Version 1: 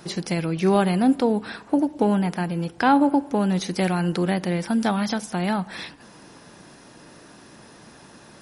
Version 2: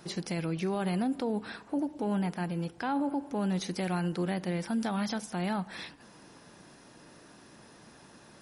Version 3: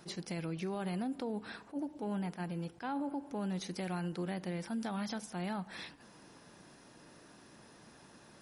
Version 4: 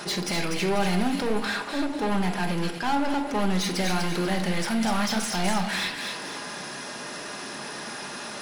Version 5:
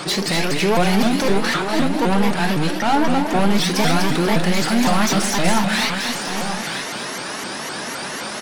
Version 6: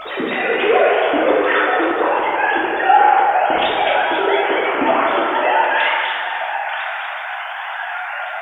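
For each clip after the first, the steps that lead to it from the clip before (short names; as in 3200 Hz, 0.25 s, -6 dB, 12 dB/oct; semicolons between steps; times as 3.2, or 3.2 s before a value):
limiter -16.5 dBFS, peak gain reduction 8.5 dB; gain -7 dB
compressor 1.5:1, threshold -36 dBFS, peak gain reduction 3.5 dB; attack slew limiter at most 370 dB/s; gain -3.5 dB
overdrive pedal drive 23 dB, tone 7700 Hz, clips at -28.5 dBFS; on a send: thin delay 0.245 s, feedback 36%, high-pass 2000 Hz, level -4 dB; on the sum: shoebox room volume 860 m³, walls furnished, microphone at 1.3 m; gain +7 dB
echo 0.929 s -8.5 dB; shaped vibrato saw up 3.9 Hz, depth 250 cents; gain +7.5 dB
sine-wave speech; bit-crush 10-bit; plate-style reverb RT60 2.2 s, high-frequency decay 0.5×, DRR -5.5 dB; gain -5.5 dB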